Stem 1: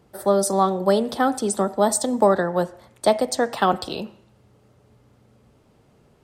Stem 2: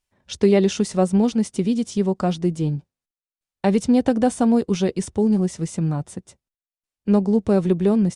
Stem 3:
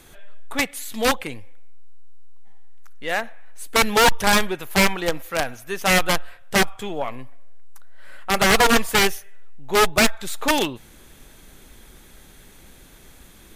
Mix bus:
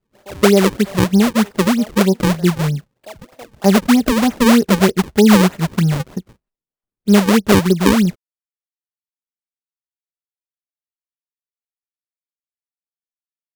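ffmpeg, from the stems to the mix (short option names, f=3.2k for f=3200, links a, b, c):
-filter_complex "[0:a]lowshelf=f=250:g=-7,alimiter=limit=-15.5dB:level=0:latency=1:release=496,adynamicequalizer=threshold=0.0224:dfrequency=610:dqfactor=2.1:tfrequency=610:tqfactor=2.1:attack=5:release=100:ratio=0.375:range=3.5:mode=boostabove:tftype=bell,volume=-13dB[a];[1:a]aecho=1:1:4.9:0.79,dynaudnorm=f=480:g=3:m=11.5dB,volume=-0.5dB[b];[a][b]amix=inputs=2:normalize=0,highshelf=f=2.6k:g=-8.5,acrusher=samples=37:mix=1:aa=0.000001:lfo=1:lforange=59.2:lforate=3.2"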